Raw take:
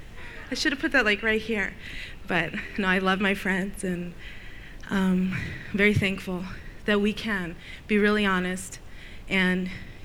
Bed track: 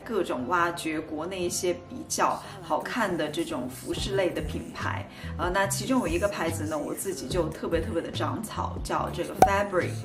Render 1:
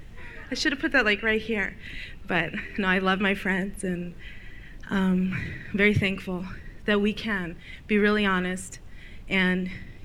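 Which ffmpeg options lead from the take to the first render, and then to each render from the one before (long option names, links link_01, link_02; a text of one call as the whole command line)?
ffmpeg -i in.wav -af "afftdn=noise_reduction=6:noise_floor=-43" out.wav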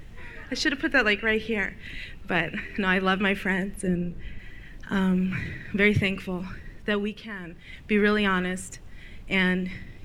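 ffmpeg -i in.wav -filter_complex "[0:a]asettb=1/sr,asplit=3[link_01][link_02][link_03];[link_01]atrim=end=3.874[link_04];[link_02]atrim=start=3.87:end=4.39,asetpts=PTS-STARTPTS,afade=type=in:duration=0.004:curve=qsin,afade=type=out:start_time=0.516:duration=0.004:curve=qsin,tiltshelf=frequency=660:gain=5.5[link_05];[link_03]atrim=start=4.386[link_06];[link_04][link_05]acrossfade=duration=0.004:curve1=hsin:curve2=qsin[link_07];[link_07][link_06]acrossfade=duration=0.004:curve1=qsin:curve2=hsin,asplit=3[link_08][link_09][link_10];[link_08]atrim=end=7.19,asetpts=PTS-STARTPTS,afade=type=out:start_time=6.74:duration=0.45:silence=0.354813[link_11];[link_09]atrim=start=7.19:end=7.35,asetpts=PTS-STARTPTS,volume=-9dB[link_12];[link_10]atrim=start=7.35,asetpts=PTS-STARTPTS,afade=type=in:duration=0.45:silence=0.354813[link_13];[link_11][link_12][link_13]concat=n=3:v=0:a=1" out.wav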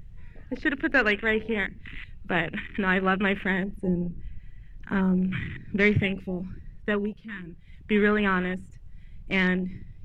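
ffmpeg -i in.wav -filter_complex "[0:a]acrossover=split=3300[link_01][link_02];[link_02]acompressor=threshold=-45dB:ratio=4:attack=1:release=60[link_03];[link_01][link_03]amix=inputs=2:normalize=0,afwtdn=0.02" out.wav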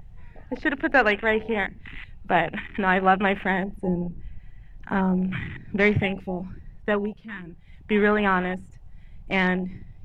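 ffmpeg -i in.wav -af "equalizer=frequency=780:width=1.8:gain=12.5" out.wav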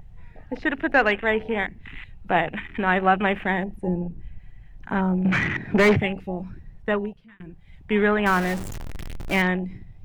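ffmpeg -i in.wav -filter_complex "[0:a]asettb=1/sr,asplit=3[link_01][link_02][link_03];[link_01]atrim=end=5.254[link_04];[link_02]atrim=start=5.25:end=5.96,asetpts=PTS-STARTPTS,afade=type=in:duration=0.004:curve=qsin,afade=type=out:start_time=0.706:duration=0.004:curve=qsin,asplit=2[link_05][link_06];[link_06]highpass=frequency=720:poles=1,volume=27dB,asoftclip=type=tanh:threshold=-7.5dB[link_07];[link_05][link_07]amix=inputs=2:normalize=0,lowpass=frequency=1300:poles=1,volume=-6dB[link_08];[link_03]atrim=start=5.956[link_09];[link_04][link_08]acrossfade=duration=0.004:curve1=hsin:curve2=qsin[link_10];[link_10][link_09]acrossfade=duration=0.004:curve1=qsin:curve2=hsin,asettb=1/sr,asplit=3[link_11][link_12][link_13];[link_11]atrim=end=8.264[link_14];[link_12]atrim=start=8.26:end=9.42,asetpts=PTS-STARTPTS,afade=type=in:duration=0.004:curve=qsin,afade=type=out:start_time=1.156:duration=0.004:curve=qsin,aeval=exprs='val(0)+0.5*0.0422*sgn(val(0))':channel_layout=same[link_15];[link_13]atrim=start=9.416[link_16];[link_14][link_15]acrossfade=duration=0.004:curve1=hsin:curve2=qsin[link_17];[link_17][link_16]acrossfade=duration=0.004:curve1=qsin:curve2=hsin,asplit=2[link_18][link_19];[link_18]atrim=end=7.4,asetpts=PTS-STARTPTS,afade=type=out:start_time=6.99:duration=0.41[link_20];[link_19]atrim=start=7.4,asetpts=PTS-STARTPTS,afade=type=in:duration=0.004:curve=hsin[link_21];[link_20][link_21]concat=n=2:v=0:a=1" out.wav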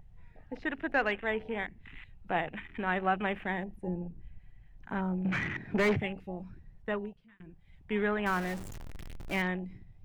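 ffmpeg -i in.wav -af "volume=-10dB" out.wav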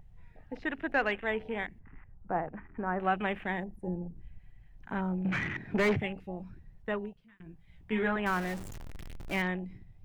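ffmpeg -i in.wav -filter_complex "[0:a]asettb=1/sr,asplit=3[link_01][link_02][link_03];[link_01]atrim=end=1.794[link_04];[link_02]atrim=start=1.79:end=3,asetpts=PTS-STARTPTS,afade=type=in:duration=0.004:curve=qsin,afade=type=out:start_time=1.206:duration=0.004:curve=qsin,lowpass=frequency=1400:width=0.5412,lowpass=frequency=1400:width=1.3066[link_05];[link_03]atrim=start=2.996[link_06];[link_04][link_05]acrossfade=duration=0.004:curve1=hsin:curve2=qsin[link_07];[link_07][link_06]acrossfade=duration=0.004:curve1=qsin:curve2=hsin,asettb=1/sr,asplit=3[link_08][link_09][link_10];[link_08]atrim=end=3.604[link_11];[link_09]atrim=start=3.6:end=4.16,asetpts=PTS-STARTPTS,afade=type=in:duration=0.004:curve=qsin,afade=type=out:start_time=0.556:duration=0.004:curve=qsin,equalizer=frequency=2800:width_type=o:width=1.3:gain=-11[link_12];[link_10]atrim=start=4.156[link_13];[link_11][link_12]acrossfade=duration=0.004:curve1=hsin:curve2=qsin[link_14];[link_14][link_13]acrossfade=duration=0.004:curve1=qsin:curve2=hsin,asettb=1/sr,asplit=3[link_15][link_16][link_17];[link_15]atrim=end=7.444[link_18];[link_16]atrim=start=7.44:end=8.16,asetpts=PTS-STARTPTS,afade=type=in:duration=0.004:curve=qsin,afade=type=out:start_time=0.716:duration=0.004:curve=qsin,asplit=2[link_19][link_20];[link_20]adelay=18,volume=-3.5dB[link_21];[link_19][link_21]amix=inputs=2:normalize=0,atrim=end_sample=31752[link_22];[link_17]atrim=start=8.156[link_23];[link_18][link_22]acrossfade=duration=0.004:curve1=hsin:curve2=qsin[link_24];[link_24][link_23]acrossfade=duration=0.004:curve1=qsin:curve2=hsin" out.wav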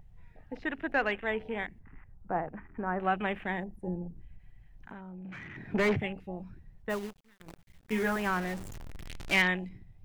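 ffmpeg -i in.wav -filter_complex "[0:a]asettb=1/sr,asplit=3[link_01][link_02][link_03];[link_01]atrim=end=4.244[link_04];[link_02]atrim=start=4.24:end=5.57,asetpts=PTS-STARTPTS,afade=type=in:duration=0.004:curve=qsin,afade=type=out:start_time=1.326:duration=0.004:curve=qsin,acompressor=threshold=-42dB:ratio=6:attack=3.2:release=140:knee=1:detection=peak[link_05];[link_03]atrim=start=5.566[link_06];[link_04][link_05]acrossfade=duration=0.004:curve1=hsin:curve2=qsin[link_07];[link_07][link_06]acrossfade=duration=0.004:curve1=qsin:curve2=hsin,asplit=3[link_08][link_09][link_10];[link_08]afade=type=out:start_time=6.89:duration=0.02[link_11];[link_09]acrusher=bits=8:dc=4:mix=0:aa=0.000001,afade=type=in:start_time=6.89:duration=0.02,afade=type=out:start_time=8.26:duration=0.02[link_12];[link_10]afade=type=in:start_time=8.26:duration=0.02[link_13];[link_11][link_12][link_13]amix=inputs=3:normalize=0,asettb=1/sr,asplit=3[link_14][link_15][link_16];[link_14]atrim=end=9.064[link_17];[link_15]atrim=start=9.06:end=9.69,asetpts=PTS-STARTPTS,afade=type=in:duration=0.004:curve=qsin,afade=type=out:start_time=0.626:duration=0.004:curve=qsin,equalizer=frequency=4400:width=0.31:gain=11.5[link_18];[link_16]atrim=start=9.686[link_19];[link_17][link_18]acrossfade=duration=0.004:curve1=hsin:curve2=qsin[link_20];[link_20][link_19]acrossfade=duration=0.004:curve1=qsin:curve2=hsin" out.wav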